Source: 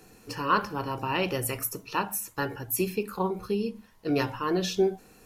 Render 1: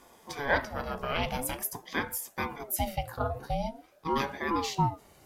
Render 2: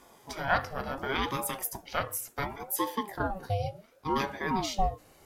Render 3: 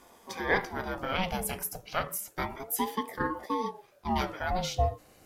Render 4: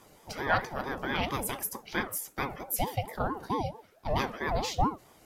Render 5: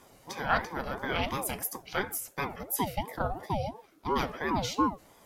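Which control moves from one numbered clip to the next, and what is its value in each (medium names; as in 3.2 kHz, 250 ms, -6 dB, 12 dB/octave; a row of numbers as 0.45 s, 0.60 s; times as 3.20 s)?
ring modulator with a swept carrier, at: 0.46 Hz, 0.7 Hz, 0.3 Hz, 4.5 Hz, 2.9 Hz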